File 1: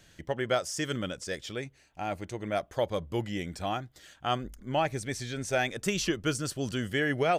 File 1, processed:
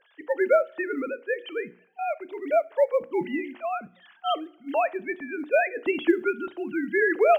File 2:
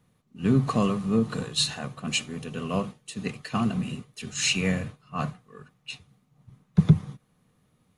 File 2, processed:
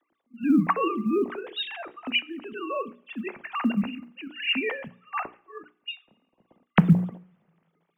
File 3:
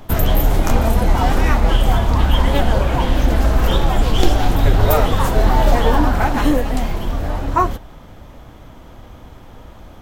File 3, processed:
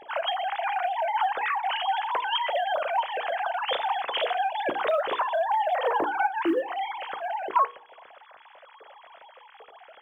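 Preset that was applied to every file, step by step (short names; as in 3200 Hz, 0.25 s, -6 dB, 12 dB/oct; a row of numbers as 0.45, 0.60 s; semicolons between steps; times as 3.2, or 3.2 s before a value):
sine-wave speech; notches 60/120/180/240/300/360/420/480 Hz; compressor 2.5:1, threshold -17 dBFS; short-mantissa float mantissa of 6-bit; two-slope reverb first 0.47 s, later 1.8 s, from -22 dB, DRR 17 dB; match loudness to -27 LUFS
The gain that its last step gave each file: +6.0, +2.5, -8.5 dB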